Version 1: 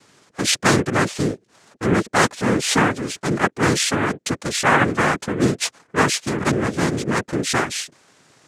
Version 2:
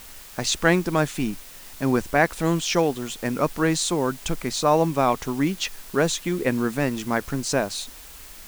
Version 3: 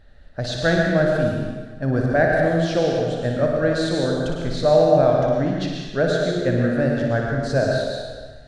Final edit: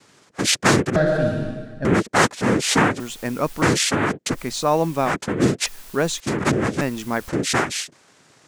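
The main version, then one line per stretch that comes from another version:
1
0:00.96–0:01.85: punch in from 3
0:03.00–0:03.62: punch in from 2
0:04.36–0:05.09: punch in from 2, crossfade 0.10 s
0:05.66–0:06.20: punch in from 2
0:06.81–0:07.29: punch in from 2

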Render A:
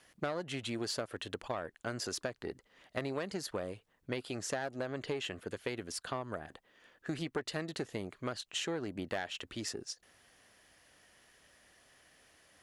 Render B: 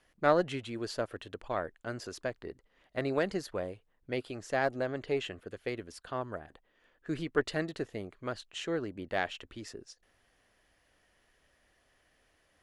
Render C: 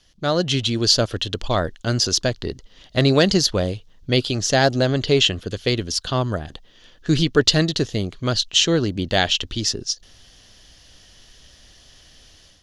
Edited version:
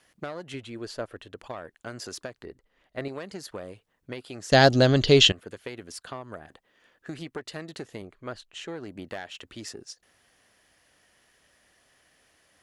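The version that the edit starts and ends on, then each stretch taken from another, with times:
A
0:00.54–0:01.38: punch in from B
0:02.45–0:03.08: punch in from B
0:04.52–0:05.32: punch in from C
0:08.02–0:08.68: punch in from B

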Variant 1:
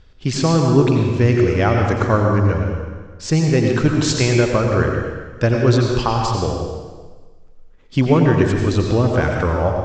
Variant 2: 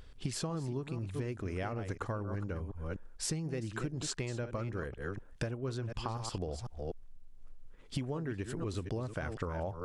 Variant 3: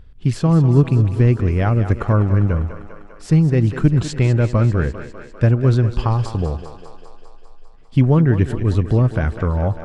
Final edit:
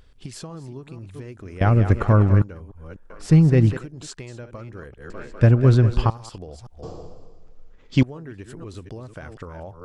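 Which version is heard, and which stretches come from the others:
2
0:01.61–0:02.42: punch in from 3
0:03.10–0:03.77: punch in from 3
0:05.10–0:06.10: punch in from 3
0:06.83–0:08.03: punch in from 1

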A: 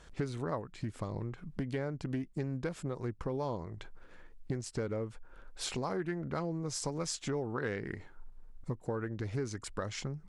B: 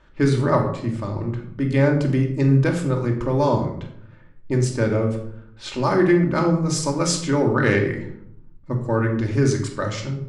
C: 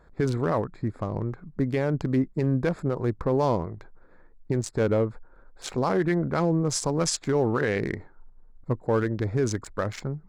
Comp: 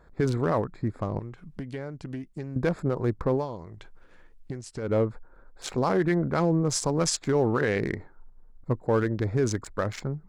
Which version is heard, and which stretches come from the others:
C
0:01.19–0:02.56: punch in from A
0:03.39–0:04.89: punch in from A, crossfade 0.16 s
not used: B

